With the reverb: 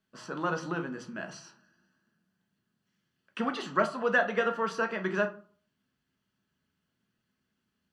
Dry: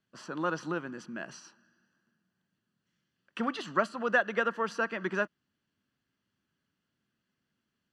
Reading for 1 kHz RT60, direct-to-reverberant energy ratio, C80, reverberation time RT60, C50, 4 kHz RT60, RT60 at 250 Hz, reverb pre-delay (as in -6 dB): 0.45 s, 4.0 dB, 18.5 dB, 0.45 s, 14.0 dB, 0.25 s, 0.50 s, 5 ms